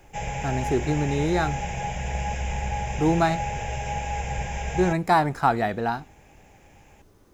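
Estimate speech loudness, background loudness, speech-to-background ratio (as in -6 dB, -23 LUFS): -25.0 LUFS, -30.5 LUFS, 5.5 dB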